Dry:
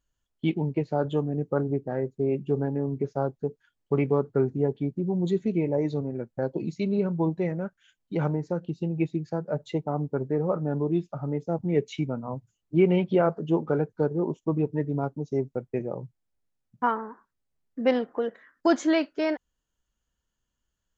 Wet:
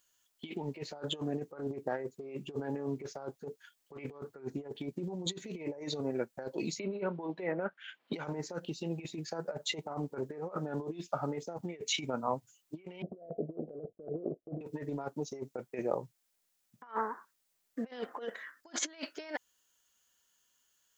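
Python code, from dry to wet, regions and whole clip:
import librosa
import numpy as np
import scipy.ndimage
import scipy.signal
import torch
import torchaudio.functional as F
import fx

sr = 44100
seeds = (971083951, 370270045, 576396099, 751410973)

y = fx.chain(x, sr, fx.highpass(hz=220.0, slope=12),
    fx.air_absorb(metres=470.0),
    fx.band_squash(depth_pct=100), at=(6.79, 8.13))
y = fx.chain(y, sr, fx.block_float(bits=3),
    fx.steep_lowpass(hz=700.0, slope=96), at=(13.02, 14.61))
y = fx.tilt_eq(y, sr, slope=3.0)
y = fx.over_compress(y, sr, threshold_db=-35.0, ratio=-0.5)
y = fx.low_shelf(y, sr, hz=200.0, db=-11.0)
y = F.gain(torch.from_numpy(y), 1.0).numpy()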